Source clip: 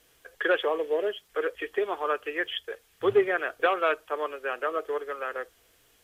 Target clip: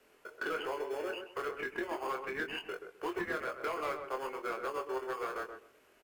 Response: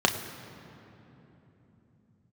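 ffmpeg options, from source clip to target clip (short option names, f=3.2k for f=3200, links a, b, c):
-filter_complex "[0:a]acrossover=split=290 2600:gain=0.0708 1 0.251[a][b][c];[a][b][c]amix=inputs=3:normalize=0,acrossover=split=820|1700[d][e][f];[d]acompressor=threshold=-44dB:ratio=4[g];[e]acompressor=threshold=-42dB:ratio=4[h];[f]acompressor=threshold=-40dB:ratio=4[i];[g][h][i]amix=inputs=3:normalize=0,asetrate=39289,aresample=44100,atempo=1.12246,asplit=2[j][k];[k]acrusher=samples=23:mix=1:aa=0.000001,volume=-9dB[l];[j][l]amix=inputs=2:normalize=0,asoftclip=type=tanh:threshold=-29dB,asplit=2[m][n];[n]adelay=23,volume=-5dB[o];[m][o]amix=inputs=2:normalize=0,asplit=2[p][q];[q]adelay=129,lowpass=f=1.3k:p=1,volume=-6dB,asplit=2[r][s];[s]adelay=129,lowpass=f=1.3k:p=1,volume=0.23,asplit=2[t][u];[u]adelay=129,lowpass=f=1.3k:p=1,volume=0.23[v];[p][r][t][v]amix=inputs=4:normalize=0"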